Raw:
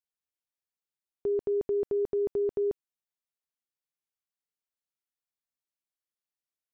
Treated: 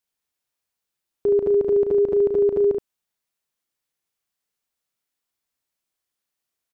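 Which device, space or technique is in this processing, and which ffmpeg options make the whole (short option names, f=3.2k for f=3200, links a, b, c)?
slapback doubling: -filter_complex "[0:a]asplit=3[a][b][c];[b]adelay=34,volume=-8dB[d];[c]adelay=72,volume=-4.5dB[e];[a][d][e]amix=inputs=3:normalize=0,volume=8.5dB"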